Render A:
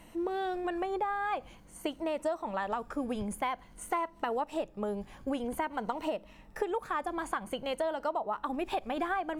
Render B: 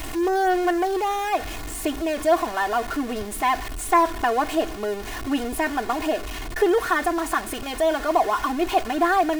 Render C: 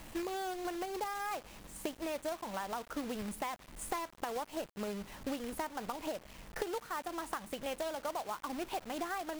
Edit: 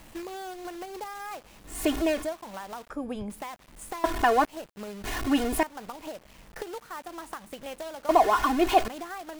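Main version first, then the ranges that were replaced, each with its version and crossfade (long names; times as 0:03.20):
C
0:01.76–0:02.21: punch in from B, crossfade 0.24 s
0:02.90–0:03.30: punch in from A
0:04.04–0:04.45: punch in from B
0:05.04–0:05.63: punch in from B
0:08.09–0:08.88: punch in from B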